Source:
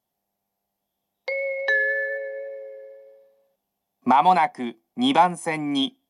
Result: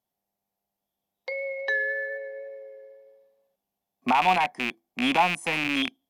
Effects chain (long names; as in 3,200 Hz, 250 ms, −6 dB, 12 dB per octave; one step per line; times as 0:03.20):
loose part that buzzes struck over −37 dBFS, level −10 dBFS
level −5 dB